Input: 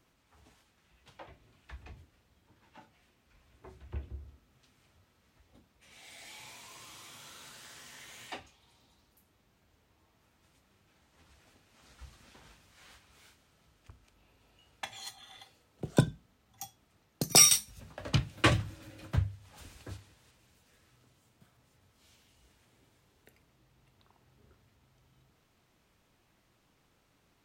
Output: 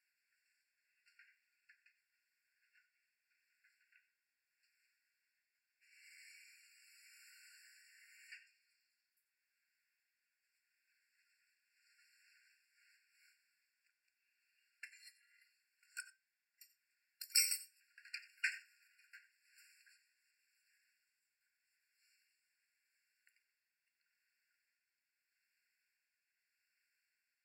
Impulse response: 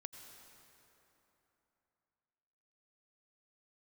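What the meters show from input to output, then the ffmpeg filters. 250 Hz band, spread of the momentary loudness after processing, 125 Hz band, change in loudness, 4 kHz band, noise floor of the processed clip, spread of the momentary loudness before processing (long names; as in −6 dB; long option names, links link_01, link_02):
below −40 dB, 25 LU, below −40 dB, −11.0 dB, −14.5 dB, below −85 dBFS, 27 LU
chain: -filter_complex "[0:a]tremolo=f=0.82:d=0.44[link_01];[1:a]atrim=start_sample=2205,atrim=end_sample=4410[link_02];[link_01][link_02]afir=irnorm=-1:irlink=0,afftfilt=real='re*eq(mod(floor(b*sr/1024/1400),2),1)':imag='im*eq(mod(floor(b*sr/1024/1400),2),1)':win_size=1024:overlap=0.75,volume=-1.5dB"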